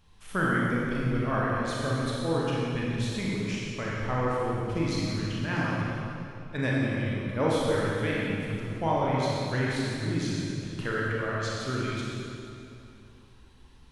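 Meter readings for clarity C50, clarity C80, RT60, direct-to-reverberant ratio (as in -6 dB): -3.5 dB, -1.5 dB, 2.7 s, -5.5 dB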